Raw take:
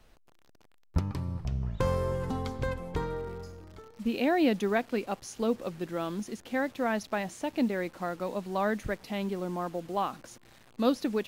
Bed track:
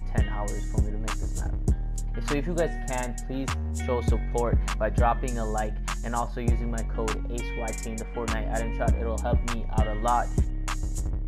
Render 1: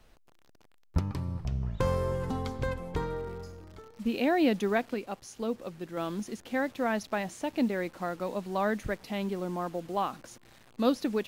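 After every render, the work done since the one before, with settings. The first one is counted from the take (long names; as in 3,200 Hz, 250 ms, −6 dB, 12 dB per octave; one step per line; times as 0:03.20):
0:04.94–0:05.97: clip gain −4 dB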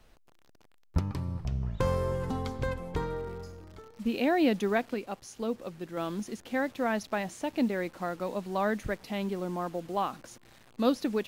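no processing that can be heard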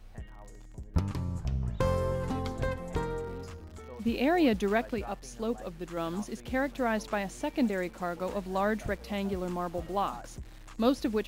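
mix in bed track −19.5 dB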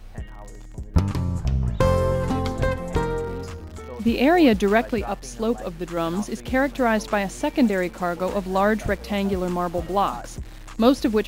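level +9 dB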